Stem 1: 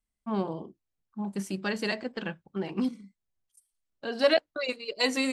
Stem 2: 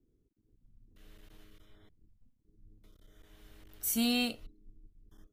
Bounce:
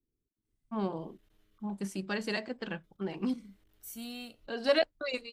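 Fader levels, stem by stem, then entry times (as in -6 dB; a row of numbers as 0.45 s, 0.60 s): -3.5 dB, -13.0 dB; 0.45 s, 0.00 s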